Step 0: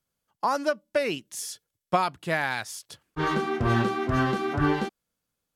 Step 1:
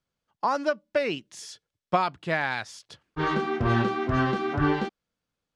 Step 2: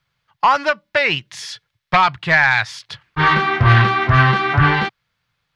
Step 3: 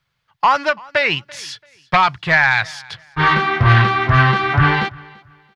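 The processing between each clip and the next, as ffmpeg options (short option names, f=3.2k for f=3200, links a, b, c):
-af "lowpass=5.1k"
-af "aeval=exprs='0.376*sin(PI/2*2.24*val(0)/0.376)':c=same,equalizer=f=125:t=o:w=1:g=11,equalizer=f=250:t=o:w=1:g=-10,equalizer=f=500:t=o:w=1:g=-4,equalizer=f=1k:t=o:w=1:g=5,equalizer=f=2k:t=o:w=1:g=9,equalizer=f=4k:t=o:w=1:g=6,equalizer=f=8k:t=o:w=1:g=-5,volume=-2.5dB"
-af "aecho=1:1:337|674:0.0631|0.0177"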